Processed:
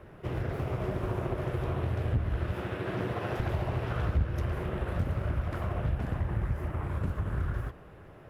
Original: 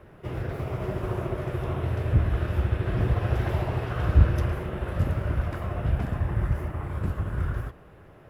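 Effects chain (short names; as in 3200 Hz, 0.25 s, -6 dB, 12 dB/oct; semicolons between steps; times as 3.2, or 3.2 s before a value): 2.54–3.4 HPF 190 Hz 12 dB/oct; compressor 2.5:1, threshold -28 dBFS, peak gain reduction 11.5 dB; Doppler distortion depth 0.54 ms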